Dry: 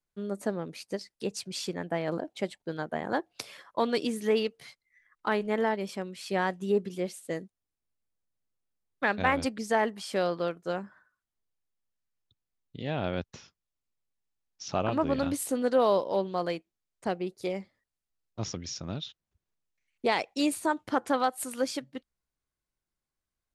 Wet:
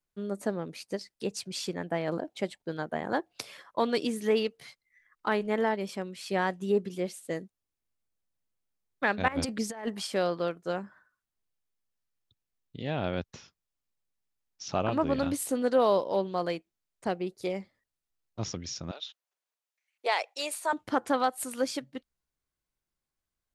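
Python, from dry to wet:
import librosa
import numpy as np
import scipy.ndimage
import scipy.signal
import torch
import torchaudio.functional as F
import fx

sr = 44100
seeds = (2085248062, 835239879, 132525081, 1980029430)

y = fx.over_compress(x, sr, threshold_db=-31.0, ratio=-0.5, at=(9.28, 10.07))
y = fx.highpass(y, sr, hz=520.0, slope=24, at=(18.91, 20.73))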